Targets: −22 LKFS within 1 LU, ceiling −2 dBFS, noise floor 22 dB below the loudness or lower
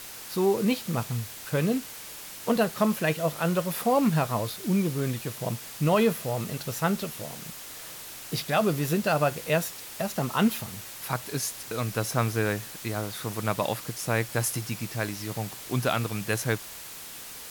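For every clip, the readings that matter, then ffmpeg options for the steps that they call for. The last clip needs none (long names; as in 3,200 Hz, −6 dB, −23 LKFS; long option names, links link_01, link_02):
background noise floor −42 dBFS; target noise floor −50 dBFS; integrated loudness −28.0 LKFS; sample peak −12.0 dBFS; target loudness −22.0 LKFS
→ -af "afftdn=noise_reduction=8:noise_floor=-42"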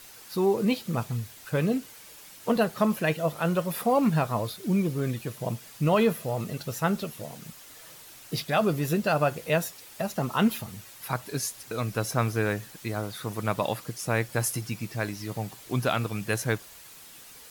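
background noise floor −49 dBFS; target noise floor −51 dBFS
→ -af "afftdn=noise_reduction=6:noise_floor=-49"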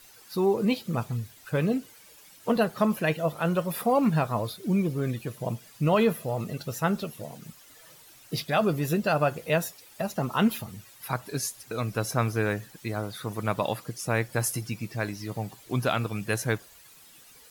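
background noise floor −53 dBFS; integrated loudness −28.5 LKFS; sample peak −12.5 dBFS; target loudness −22.0 LKFS
→ -af "volume=6.5dB"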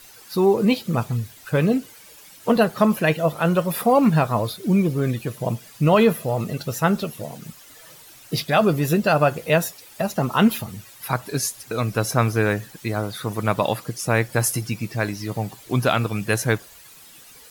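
integrated loudness −22.0 LKFS; sample peak −6.0 dBFS; background noise floor −47 dBFS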